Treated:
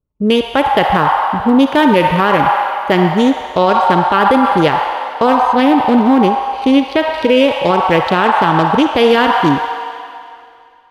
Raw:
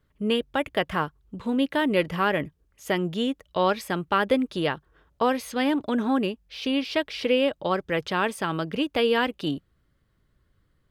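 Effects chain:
adaptive Wiener filter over 25 samples
noise gate with hold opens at −51 dBFS
automatic gain control gain up to 3 dB
on a send at −6.5 dB: high-pass with resonance 860 Hz, resonance Q 5.9 + convolution reverb RT60 2.4 s, pre-delay 44 ms
0:05.52–0:07.18: on the sum: dynamic equaliser 6,900 Hz, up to −5 dB, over −47 dBFS, Q 0.79
boost into a limiter +13.5 dB
level −1 dB

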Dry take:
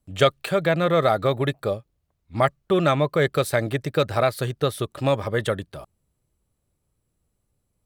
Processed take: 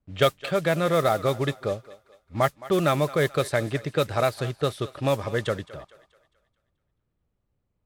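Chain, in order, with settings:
noise that follows the level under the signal 20 dB
low-pass that shuts in the quiet parts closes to 2,700 Hz, open at −15 dBFS
feedback echo with a high-pass in the loop 216 ms, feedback 44%, high-pass 420 Hz, level −17 dB
level −2.5 dB

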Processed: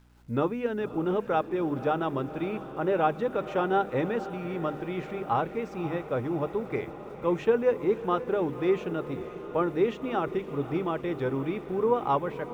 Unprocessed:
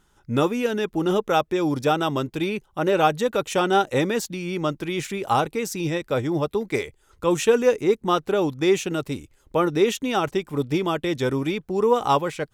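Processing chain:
low-pass filter 1,900 Hz 12 dB per octave
mains-hum notches 50/100/150/200/250/300 Hz
mains hum 60 Hz, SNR 30 dB
bit reduction 10 bits
feedback delay with all-pass diffusion 545 ms, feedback 71%, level −13.5 dB
level −5.5 dB

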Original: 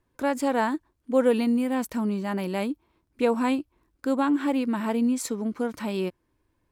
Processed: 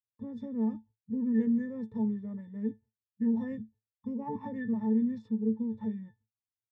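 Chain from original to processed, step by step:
noise gate −46 dBFS, range −33 dB
parametric band 140 Hz +14.5 dB 3 octaves
formants moved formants −6 semitones
pitch vibrato 2.4 Hz 26 cents
resonances in every octave A, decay 0.16 s
level −7 dB

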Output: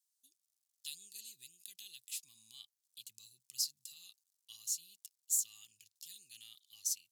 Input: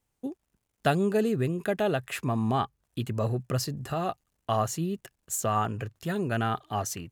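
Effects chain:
inverse Chebyshev high-pass filter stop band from 1,600 Hz, stop band 50 dB

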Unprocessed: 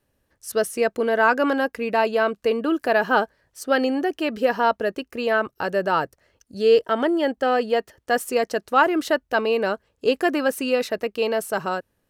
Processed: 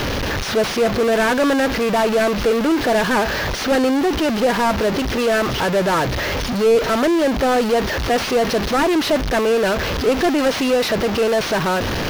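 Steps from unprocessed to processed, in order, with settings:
linear delta modulator 32 kbit/s, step −34.5 dBFS
in parallel at −8.5 dB: fuzz pedal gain 48 dB, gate −46 dBFS

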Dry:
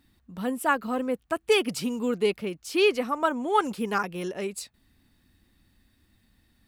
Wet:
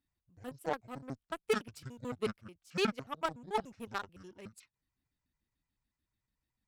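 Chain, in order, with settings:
pitch shifter gated in a rhythm −11 semitones, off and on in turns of 73 ms
harmonic generator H 7 −19 dB, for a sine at −9.5 dBFS
level −9 dB

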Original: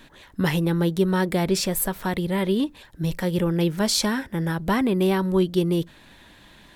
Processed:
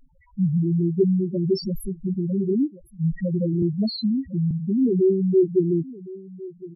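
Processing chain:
in parallel at −5 dB: hard clipping −17.5 dBFS, distortion −15 dB
0:02.50–0:03.12: on the sum: sample-rate reduction 1,000 Hz, jitter 0%
dynamic equaliser 450 Hz, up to +4 dB, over −32 dBFS, Q 2.2
on a send: single-tap delay 1,060 ms −18.5 dB
0:01.38–0:01.89: on the sum: transient designer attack −2 dB, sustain +6 dB
spectral peaks only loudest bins 2
0:03.62–0:04.51: multiband upward and downward compressor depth 40%

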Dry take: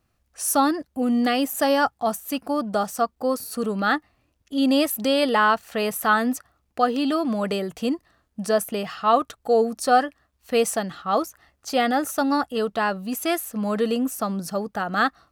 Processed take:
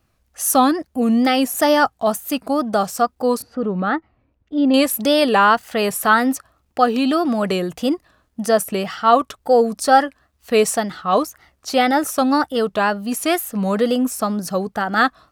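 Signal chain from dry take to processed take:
tape wow and flutter 120 cents
0:03.42–0:04.74: head-to-tape spacing loss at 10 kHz 38 dB
level +5 dB

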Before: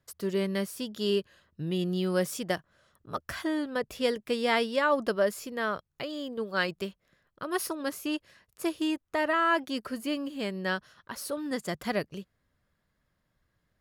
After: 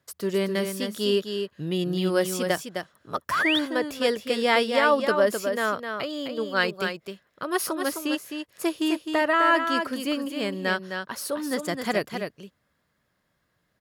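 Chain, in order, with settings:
on a send: single-tap delay 259 ms −6.5 dB
on the sum: sound drawn into the spectrogram rise, 0:03.31–0:03.59, 970–3,900 Hz −29 dBFS
high-pass filter 180 Hz 6 dB per octave
level +5 dB

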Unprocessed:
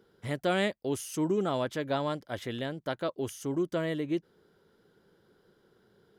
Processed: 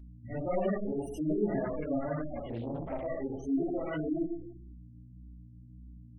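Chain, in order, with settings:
lower of the sound and its delayed copy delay 0.36 ms
tuned comb filter 280 Hz, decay 0.16 s, harmonics all, mix 50%
four-comb reverb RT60 0.87 s, combs from 26 ms, DRR −7.5 dB
mains hum 60 Hz, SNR 14 dB
gate on every frequency bin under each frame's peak −15 dB strong
flanger 1.7 Hz, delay 3.1 ms, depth 7.3 ms, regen −24%
0:02.49–0:03.07: highs frequency-modulated by the lows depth 0.48 ms

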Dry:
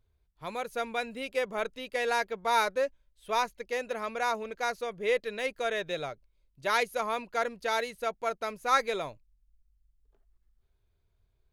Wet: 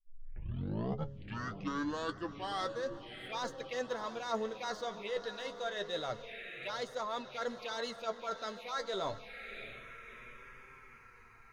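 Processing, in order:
turntable start at the beginning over 2.97 s
parametric band 2,600 Hz +13 dB 1.9 octaves
hum removal 138.9 Hz, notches 4
reversed playback
downward compressor 8 to 1, threshold −36 dBFS, peak gain reduction 22 dB
reversed playback
feedback delay with all-pass diffusion 664 ms, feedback 59%, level −11.5 dB
phaser swept by the level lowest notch 530 Hz, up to 2,400 Hz, full sweep at −37.5 dBFS
in parallel at −9 dB: soft clipping −40 dBFS, distortion −11 dB
on the sum: flanger 0.28 Hz, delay 7.5 ms, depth 3.1 ms, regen +43%
level +6.5 dB

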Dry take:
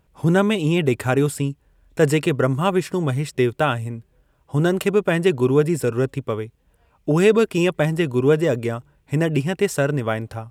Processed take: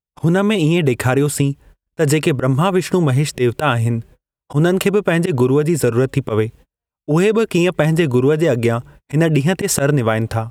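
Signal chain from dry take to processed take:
noise gate −49 dBFS, range −44 dB
in parallel at −0.5 dB: brickwall limiter −14.5 dBFS, peak gain reduction 10 dB
on the sum: automatic gain control gain up to 10 dB
volume swells 103 ms
downward compressor, threshold −16 dBFS, peak gain reduction 10.5 dB
level +4.5 dB

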